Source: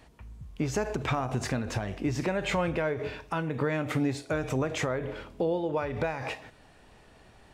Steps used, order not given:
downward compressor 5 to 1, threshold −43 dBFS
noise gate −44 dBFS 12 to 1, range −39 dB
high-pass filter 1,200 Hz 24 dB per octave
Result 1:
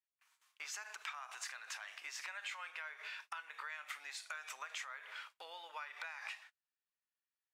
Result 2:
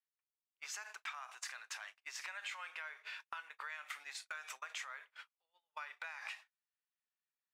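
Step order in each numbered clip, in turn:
noise gate, then high-pass filter, then downward compressor
high-pass filter, then noise gate, then downward compressor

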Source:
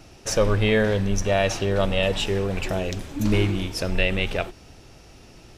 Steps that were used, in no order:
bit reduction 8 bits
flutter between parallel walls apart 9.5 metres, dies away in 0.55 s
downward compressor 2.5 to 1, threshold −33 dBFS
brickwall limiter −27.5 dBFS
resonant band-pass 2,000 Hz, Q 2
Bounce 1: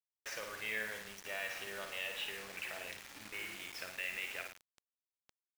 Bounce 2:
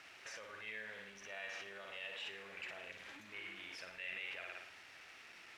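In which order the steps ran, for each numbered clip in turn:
downward compressor, then resonant band-pass, then brickwall limiter, then flutter between parallel walls, then bit reduction
flutter between parallel walls, then brickwall limiter, then bit reduction, then downward compressor, then resonant band-pass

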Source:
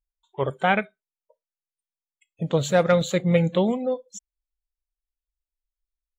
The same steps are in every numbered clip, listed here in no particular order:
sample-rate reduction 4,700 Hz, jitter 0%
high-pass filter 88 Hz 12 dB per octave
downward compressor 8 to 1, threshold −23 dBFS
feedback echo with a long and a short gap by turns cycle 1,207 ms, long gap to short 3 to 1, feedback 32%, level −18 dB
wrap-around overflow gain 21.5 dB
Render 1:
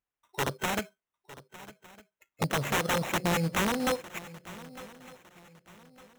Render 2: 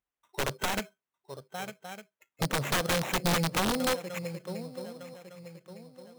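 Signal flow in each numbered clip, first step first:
downward compressor, then wrap-around overflow, then high-pass filter, then sample-rate reduction, then feedback echo with a long and a short gap by turns
feedback echo with a long and a short gap by turns, then sample-rate reduction, then high-pass filter, then downward compressor, then wrap-around overflow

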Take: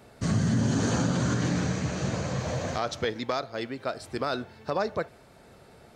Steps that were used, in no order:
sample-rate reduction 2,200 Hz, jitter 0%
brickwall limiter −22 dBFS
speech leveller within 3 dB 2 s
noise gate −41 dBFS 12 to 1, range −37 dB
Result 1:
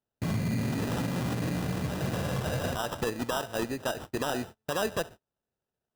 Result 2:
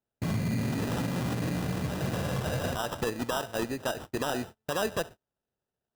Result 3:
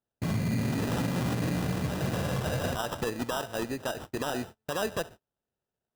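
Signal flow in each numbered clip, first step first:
noise gate, then sample-rate reduction, then brickwall limiter, then speech leveller
sample-rate reduction, then brickwall limiter, then noise gate, then speech leveller
sample-rate reduction, then noise gate, then speech leveller, then brickwall limiter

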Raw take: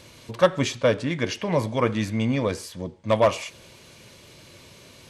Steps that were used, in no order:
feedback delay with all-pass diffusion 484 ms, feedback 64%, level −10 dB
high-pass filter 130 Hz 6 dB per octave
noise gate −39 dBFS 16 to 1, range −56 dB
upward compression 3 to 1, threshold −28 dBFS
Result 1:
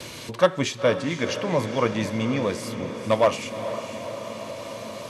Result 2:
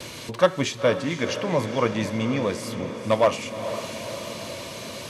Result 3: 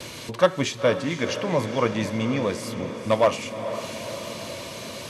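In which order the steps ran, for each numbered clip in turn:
feedback delay with all-pass diffusion, then upward compression, then noise gate, then high-pass filter
high-pass filter, then upward compression, then feedback delay with all-pass diffusion, then noise gate
high-pass filter, then upward compression, then noise gate, then feedback delay with all-pass diffusion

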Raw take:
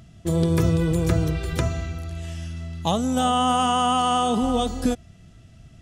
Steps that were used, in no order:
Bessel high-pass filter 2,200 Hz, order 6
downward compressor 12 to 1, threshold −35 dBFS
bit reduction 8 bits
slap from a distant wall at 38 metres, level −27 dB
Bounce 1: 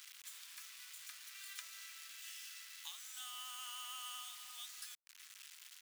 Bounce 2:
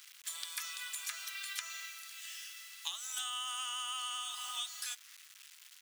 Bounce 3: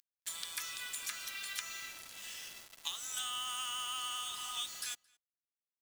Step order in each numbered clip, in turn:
downward compressor, then slap from a distant wall, then bit reduction, then Bessel high-pass filter
slap from a distant wall, then bit reduction, then Bessel high-pass filter, then downward compressor
Bessel high-pass filter, then downward compressor, then bit reduction, then slap from a distant wall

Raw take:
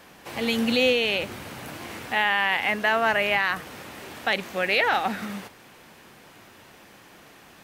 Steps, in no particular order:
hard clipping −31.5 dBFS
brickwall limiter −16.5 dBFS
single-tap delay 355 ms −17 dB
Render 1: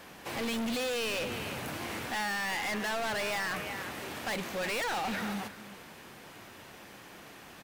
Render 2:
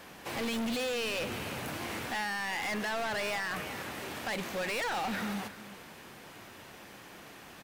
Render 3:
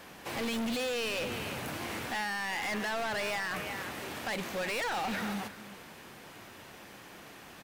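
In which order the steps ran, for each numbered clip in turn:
single-tap delay, then hard clipping, then brickwall limiter
brickwall limiter, then single-tap delay, then hard clipping
single-tap delay, then brickwall limiter, then hard clipping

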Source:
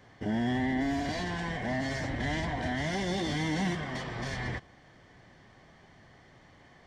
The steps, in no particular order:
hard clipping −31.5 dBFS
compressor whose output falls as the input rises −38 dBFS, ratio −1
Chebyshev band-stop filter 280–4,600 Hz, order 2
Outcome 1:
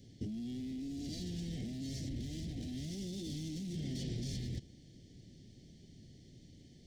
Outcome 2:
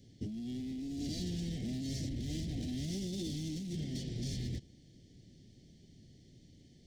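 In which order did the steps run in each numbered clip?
hard clipping, then compressor whose output falls as the input rises, then Chebyshev band-stop filter
hard clipping, then Chebyshev band-stop filter, then compressor whose output falls as the input rises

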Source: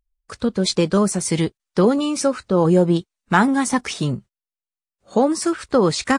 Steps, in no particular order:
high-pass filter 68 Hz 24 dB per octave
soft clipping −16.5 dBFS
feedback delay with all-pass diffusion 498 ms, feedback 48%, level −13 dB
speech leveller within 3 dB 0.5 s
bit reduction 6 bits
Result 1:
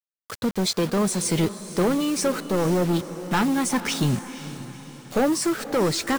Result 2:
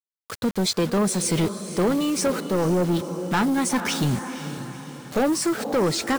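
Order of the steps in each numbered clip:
high-pass filter, then soft clipping, then speech leveller, then bit reduction, then feedback delay with all-pass diffusion
high-pass filter, then bit reduction, then speech leveller, then feedback delay with all-pass diffusion, then soft clipping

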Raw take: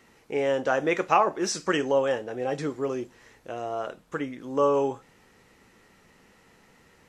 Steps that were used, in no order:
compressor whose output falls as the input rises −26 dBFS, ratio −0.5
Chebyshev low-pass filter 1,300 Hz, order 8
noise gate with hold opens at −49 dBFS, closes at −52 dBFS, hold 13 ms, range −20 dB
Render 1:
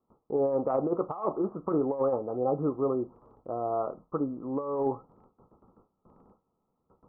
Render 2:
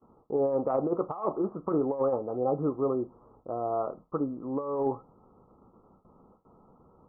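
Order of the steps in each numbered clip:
Chebyshev low-pass filter, then compressor whose output falls as the input rises, then noise gate with hold
noise gate with hold, then Chebyshev low-pass filter, then compressor whose output falls as the input rises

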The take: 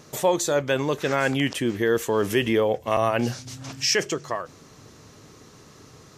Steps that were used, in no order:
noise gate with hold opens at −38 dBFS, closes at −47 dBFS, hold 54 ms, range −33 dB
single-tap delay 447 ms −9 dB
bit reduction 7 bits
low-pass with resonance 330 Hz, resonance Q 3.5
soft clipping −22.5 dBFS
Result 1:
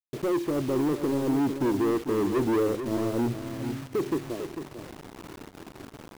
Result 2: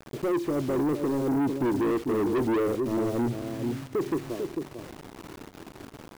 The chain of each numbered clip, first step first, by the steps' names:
noise gate with hold, then low-pass with resonance, then soft clipping, then bit reduction, then single-tap delay
low-pass with resonance, then noise gate with hold, then bit reduction, then single-tap delay, then soft clipping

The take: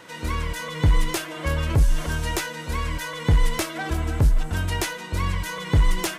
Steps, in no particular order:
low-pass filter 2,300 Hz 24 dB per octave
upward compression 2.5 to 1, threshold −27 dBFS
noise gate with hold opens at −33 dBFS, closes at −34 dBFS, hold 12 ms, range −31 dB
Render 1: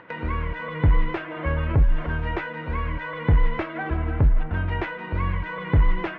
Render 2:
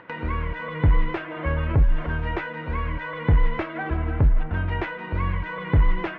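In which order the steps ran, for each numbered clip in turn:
low-pass filter, then noise gate with hold, then upward compression
noise gate with hold, then low-pass filter, then upward compression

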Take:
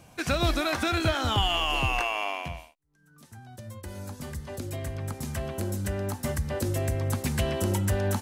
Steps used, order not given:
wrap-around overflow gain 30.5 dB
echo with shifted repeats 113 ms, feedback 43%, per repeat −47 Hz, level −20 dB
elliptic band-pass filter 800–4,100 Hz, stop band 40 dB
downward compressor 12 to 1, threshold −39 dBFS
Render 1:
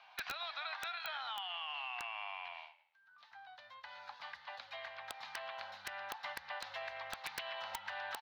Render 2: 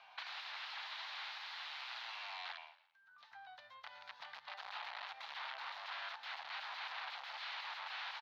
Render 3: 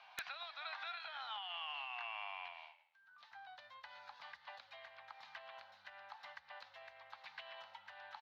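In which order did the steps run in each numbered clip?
echo with shifted repeats, then elliptic band-pass filter, then downward compressor, then wrap-around overflow
wrap-around overflow, then echo with shifted repeats, then downward compressor, then elliptic band-pass filter
echo with shifted repeats, then downward compressor, then elliptic band-pass filter, then wrap-around overflow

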